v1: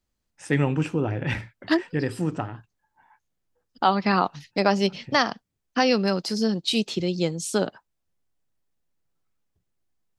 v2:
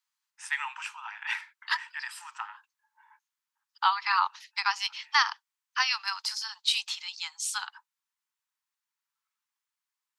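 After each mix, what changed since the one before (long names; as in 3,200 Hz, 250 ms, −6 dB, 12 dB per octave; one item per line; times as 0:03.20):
master: add Butterworth high-pass 870 Hz 96 dB per octave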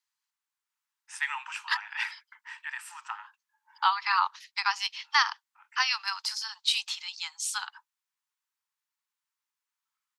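first voice: entry +0.70 s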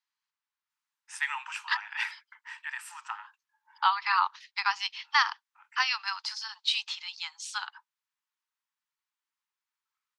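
second voice: add low-pass filter 4,800 Hz 12 dB per octave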